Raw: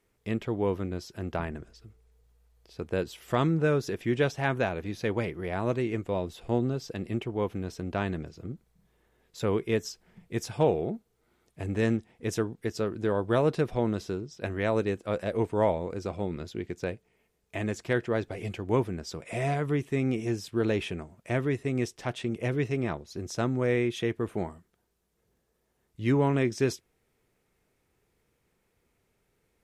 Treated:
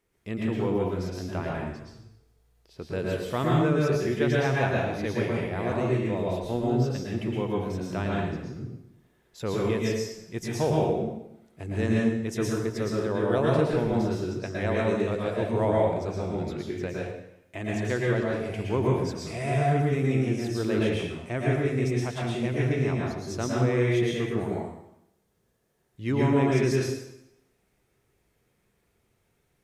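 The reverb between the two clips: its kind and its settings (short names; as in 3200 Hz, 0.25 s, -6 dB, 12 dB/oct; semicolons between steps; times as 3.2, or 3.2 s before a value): plate-style reverb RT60 0.82 s, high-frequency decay 0.95×, pre-delay 0.1 s, DRR -4 dB; gain -3 dB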